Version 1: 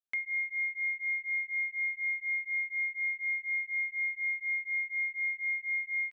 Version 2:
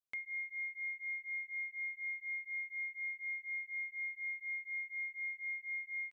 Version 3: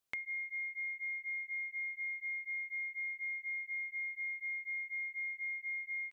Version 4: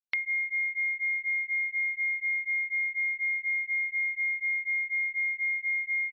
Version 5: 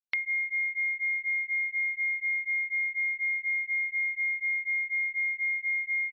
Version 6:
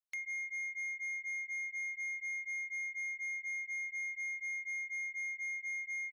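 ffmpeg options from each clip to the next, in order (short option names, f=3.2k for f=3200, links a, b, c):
-af "equalizer=f=2k:w=1.5:g=-5.5,volume=-3dB"
-af "acompressor=threshold=-47dB:ratio=6,volume=8.5dB"
-af "afftfilt=real='re*gte(hypot(re,im),0.00158)':imag='im*gte(hypot(re,im),0.00158)':win_size=1024:overlap=0.75,crystalizer=i=10:c=0"
-af anull
-af "asoftclip=type=tanh:threshold=-29dB,volume=-7dB"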